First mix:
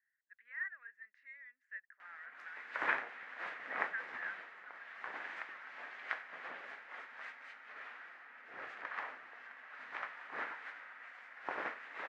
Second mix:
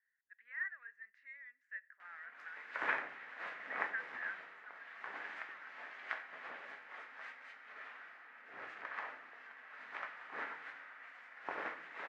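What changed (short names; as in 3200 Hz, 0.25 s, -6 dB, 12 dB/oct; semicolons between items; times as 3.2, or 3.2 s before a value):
background -4.0 dB; reverb: on, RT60 0.60 s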